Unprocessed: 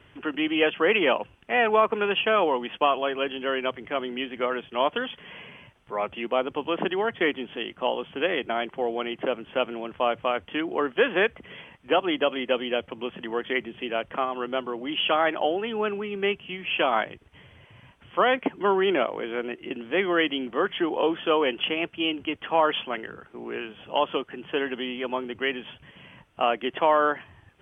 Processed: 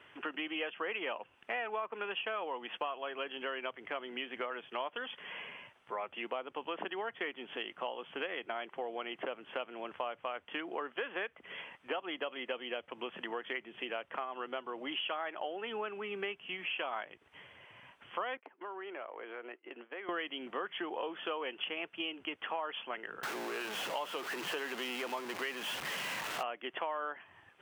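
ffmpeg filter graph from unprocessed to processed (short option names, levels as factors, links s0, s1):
-filter_complex "[0:a]asettb=1/sr,asplit=3[s0][s1][s2];[s0]atrim=end=18.374[s3];[s1]atrim=start=18.37:end=20.09,asetpts=PTS-STARTPTS,afade=t=in:d=0.004:c=qsin,afade=t=out:st=1.716:d=0.004:c=qsin,agate=range=0.0224:threshold=0.0224:ratio=3:release=100:detection=peak,acrossover=split=270 2800:gain=0.0891 1 0.0891[s4][s5][s6];[s4][s5][s6]amix=inputs=3:normalize=0,acompressor=threshold=0.0126:ratio=6:attack=3.2:release=140:knee=1:detection=peak[s7];[s2]atrim=start=20.086[s8];[s3][s7]acrossfade=d=0.004:c1=hsin:c2=qsin[s9];[s9][s8]acrossfade=d=0.004:c1=qsin:c2=hsin,asettb=1/sr,asplit=3[s10][s11][s12];[s10]atrim=end=23.234[s13];[s11]atrim=start=23.23:end=26.43,asetpts=PTS-STARTPTS,afade=t=in:d=0.004:c=qsin,afade=t=out:st=3.196:d=0.004:c=qsin,aeval=exprs='val(0)+0.5*0.0501*sgn(val(0))':c=same,equalizer=f=83:w=1.7:g=-12[s14];[s12]atrim=start=26.426[s15];[s13][s14]acrossfade=d=0.004:c1=hsin:c2=qsin[s16];[s16][s15]acrossfade=d=0.004:c1=qsin:c2=hsin,highpass=f=1300:p=1,highshelf=f=2500:g=-10.5,acompressor=threshold=0.00891:ratio=5,volume=1.78"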